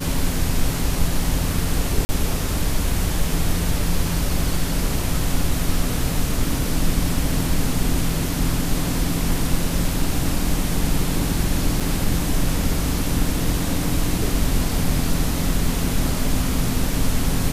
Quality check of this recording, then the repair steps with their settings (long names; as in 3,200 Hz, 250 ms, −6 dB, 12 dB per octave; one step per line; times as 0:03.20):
0:02.05–0:02.09: drop-out 40 ms
0:11.80–0:11.81: drop-out 5.2 ms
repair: repair the gap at 0:02.05, 40 ms
repair the gap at 0:11.80, 5.2 ms